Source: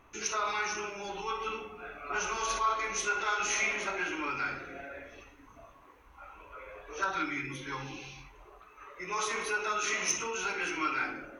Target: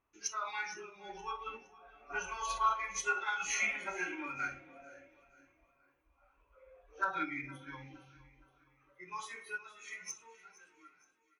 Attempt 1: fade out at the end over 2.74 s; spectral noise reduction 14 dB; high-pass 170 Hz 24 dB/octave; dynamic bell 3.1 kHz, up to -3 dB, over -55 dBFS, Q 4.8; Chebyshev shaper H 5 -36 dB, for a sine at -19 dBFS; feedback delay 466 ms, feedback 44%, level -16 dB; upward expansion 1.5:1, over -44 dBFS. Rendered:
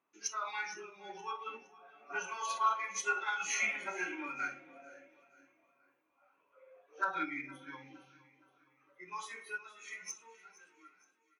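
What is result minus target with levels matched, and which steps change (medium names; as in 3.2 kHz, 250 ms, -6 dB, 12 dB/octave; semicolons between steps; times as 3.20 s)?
125 Hz band -7.5 dB
remove: high-pass 170 Hz 24 dB/octave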